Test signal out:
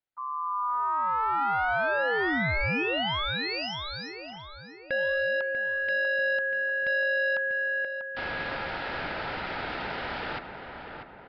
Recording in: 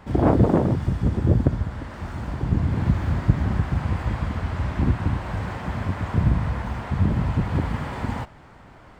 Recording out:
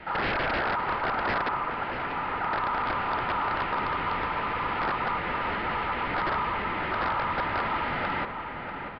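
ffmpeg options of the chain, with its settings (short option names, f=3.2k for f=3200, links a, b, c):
-filter_complex "[0:a]highpass=f=50:w=0.5412,highpass=f=50:w=1.3066,highshelf=f=4k:g=-7,acrossover=split=100|420|1100[a][b][c][d];[b]acontrast=87[e];[a][e][c][d]amix=inputs=4:normalize=0,aeval=exprs='(mod(3.35*val(0)+1,2)-1)/3.35':c=same,asplit=2[f][g];[g]highpass=f=720:p=1,volume=23dB,asoftclip=type=tanh:threshold=-10.5dB[h];[f][h]amix=inputs=2:normalize=0,lowpass=f=1.6k:p=1,volume=-6dB,asoftclip=type=hard:threshold=-16dB,aeval=exprs='val(0)*sin(2*PI*1100*n/s)':c=same,asplit=2[i][j];[j]adelay=642,lowpass=f=2.1k:p=1,volume=-6.5dB,asplit=2[k][l];[l]adelay=642,lowpass=f=2.1k:p=1,volume=0.51,asplit=2[m][n];[n]adelay=642,lowpass=f=2.1k:p=1,volume=0.51,asplit=2[o][p];[p]adelay=642,lowpass=f=2.1k:p=1,volume=0.51,asplit=2[q][r];[r]adelay=642,lowpass=f=2.1k:p=1,volume=0.51,asplit=2[s][t];[t]adelay=642,lowpass=f=2.1k:p=1,volume=0.51[u];[i][k][m][o][q][s][u]amix=inputs=7:normalize=0,aresample=11025,aresample=44100,volume=-6.5dB"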